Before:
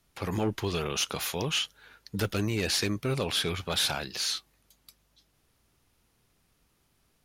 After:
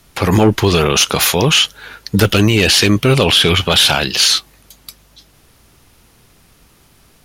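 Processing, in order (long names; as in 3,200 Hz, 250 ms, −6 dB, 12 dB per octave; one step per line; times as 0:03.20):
0:02.25–0:04.28: parametric band 3,000 Hz +9.5 dB 0.33 octaves
boost into a limiter +21 dB
level −1 dB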